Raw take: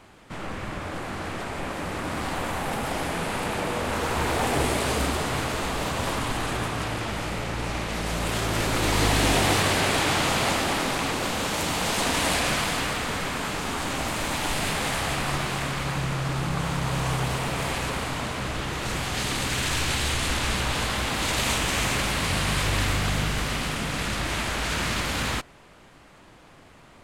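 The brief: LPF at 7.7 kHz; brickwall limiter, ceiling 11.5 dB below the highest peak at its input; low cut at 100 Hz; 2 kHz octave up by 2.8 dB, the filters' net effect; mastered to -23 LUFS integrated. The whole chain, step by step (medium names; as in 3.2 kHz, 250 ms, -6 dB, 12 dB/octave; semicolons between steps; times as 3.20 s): high-pass 100 Hz; low-pass 7.7 kHz; peaking EQ 2 kHz +3.5 dB; trim +6.5 dB; peak limiter -14.5 dBFS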